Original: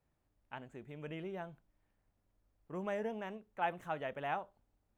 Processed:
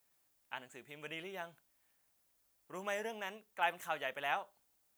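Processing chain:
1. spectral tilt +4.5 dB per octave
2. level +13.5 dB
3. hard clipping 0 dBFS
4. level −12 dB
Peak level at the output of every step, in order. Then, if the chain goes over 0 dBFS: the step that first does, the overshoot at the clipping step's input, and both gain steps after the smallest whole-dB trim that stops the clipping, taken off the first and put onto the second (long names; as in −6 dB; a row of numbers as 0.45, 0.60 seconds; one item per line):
−19.5, −6.0, −6.0, −18.0 dBFS
no step passes full scale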